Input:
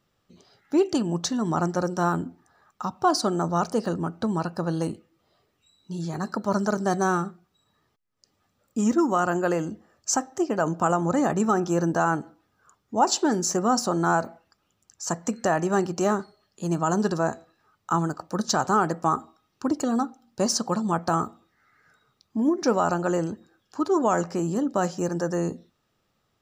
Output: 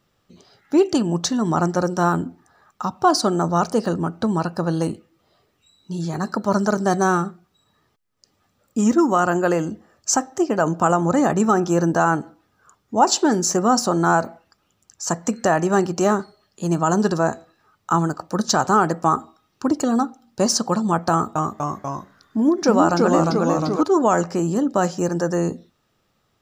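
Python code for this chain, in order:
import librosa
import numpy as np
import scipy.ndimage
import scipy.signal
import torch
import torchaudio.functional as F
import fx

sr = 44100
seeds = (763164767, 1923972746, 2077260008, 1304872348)

y = fx.echo_pitch(x, sr, ms=244, semitones=-1, count=3, db_per_echo=-3.0, at=(21.11, 23.83))
y = F.gain(torch.from_numpy(y), 5.0).numpy()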